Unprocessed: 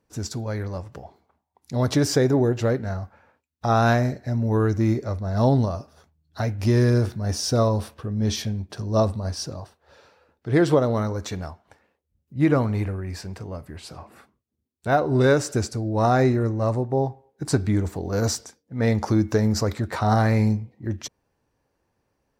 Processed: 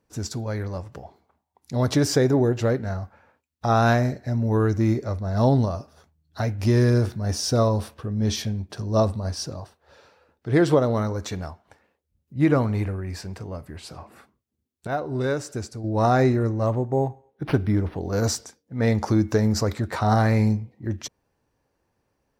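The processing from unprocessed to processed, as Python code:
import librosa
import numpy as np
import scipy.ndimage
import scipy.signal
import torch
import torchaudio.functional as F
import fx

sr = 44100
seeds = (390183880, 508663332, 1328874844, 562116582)

y = fx.resample_linear(x, sr, factor=6, at=(16.66, 18.01))
y = fx.edit(y, sr, fx.clip_gain(start_s=14.87, length_s=0.97, db=-7.0), tone=tone)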